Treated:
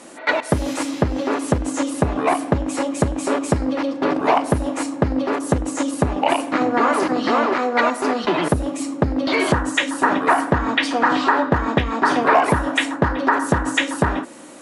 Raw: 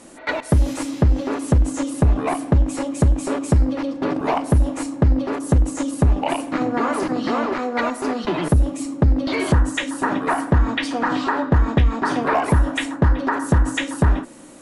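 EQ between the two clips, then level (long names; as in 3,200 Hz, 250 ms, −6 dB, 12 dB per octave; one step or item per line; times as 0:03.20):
high-pass filter 390 Hz 6 dB per octave
high-shelf EQ 6,400 Hz −5.5 dB
+6.0 dB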